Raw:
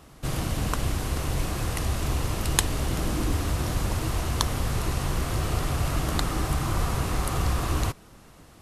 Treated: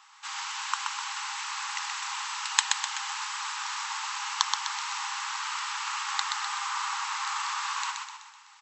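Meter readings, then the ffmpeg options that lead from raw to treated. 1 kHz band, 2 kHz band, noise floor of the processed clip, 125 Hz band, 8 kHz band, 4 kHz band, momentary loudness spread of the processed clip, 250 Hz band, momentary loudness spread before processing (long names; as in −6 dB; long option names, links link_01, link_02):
+2.0 dB, +3.5 dB, −53 dBFS, below −40 dB, +1.0 dB, +3.5 dB, 6 LU, below −40 dB, 3 LU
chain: -filter_complex "[0:a]asplit=7[link_01][link_02][link_03][link_04][link_05][link_06][link_07];[link_02]adelay=126,afreqshift=-30,volume=-4dB[link_08];[link_03]adelay=252,afreqshift=-60,volume=-10.4dB[link_09];[link_04]adelay=378,afreqshift=-90,volume=-16.8dB[link_10];[link_05]adelay=504,afreqshift=-120,volume=-23.1dB[link_11];[link_06]adelay=630,afreqshift=-150,volume=-29.5dB[link_12];[link_07]adelay=756,afreqshift=-180,volume=-35.9dB[link_13];[link_01][link_08][link_09][link_10][link_11][link_12][link_13]amix=inputs=7:normalize=0,afftfilt=real='re*between(b*sr/4096,790,8000)':imag='im*between(b*sr/4096,790,8000)':win_size=4096:overlap=0.75,volume=1.5dB"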